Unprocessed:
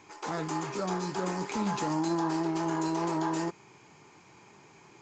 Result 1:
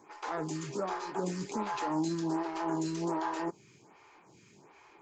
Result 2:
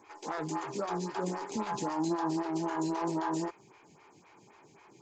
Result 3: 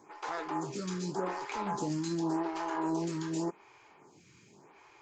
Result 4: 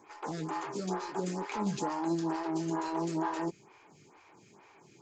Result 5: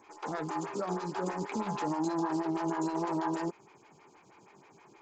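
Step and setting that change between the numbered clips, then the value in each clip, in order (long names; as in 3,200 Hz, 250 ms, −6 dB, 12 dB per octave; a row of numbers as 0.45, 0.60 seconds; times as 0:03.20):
phaser with staggered stages, speed: 1.3, 3.8, 0.87, 2.2, 6.3 Hertz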